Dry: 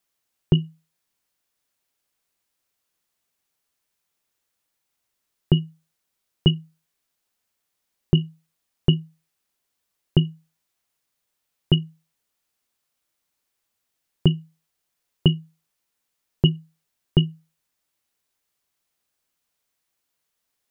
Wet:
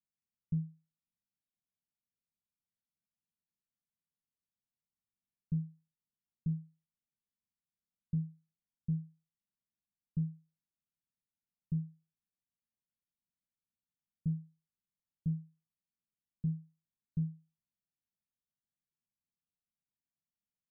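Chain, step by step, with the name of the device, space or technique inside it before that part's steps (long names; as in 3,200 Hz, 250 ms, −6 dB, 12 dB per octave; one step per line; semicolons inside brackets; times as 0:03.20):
overdriven synthesiser ladder filter (soft clipping −21 dBFS, distortion −5 dB; transistor ladder low-pass 240 Hz, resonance 45%)
level −3.5 dB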